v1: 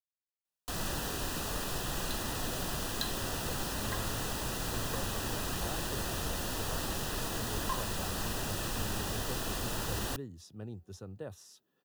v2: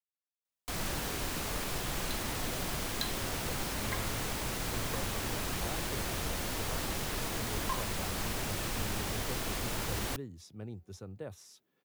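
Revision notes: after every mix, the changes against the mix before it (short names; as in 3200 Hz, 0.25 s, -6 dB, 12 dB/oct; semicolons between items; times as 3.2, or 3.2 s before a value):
master: remove Butterworth band-stop 2200 Hz, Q 4.8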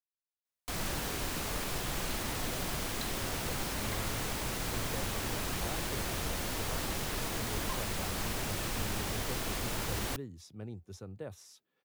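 second sound -7.0 dB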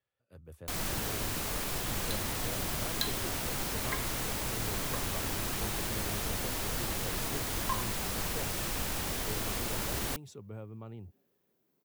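speech: entry -2.85 s; second sound +9.5 dB; master: add high shelf 9200 Hz +5.5 dB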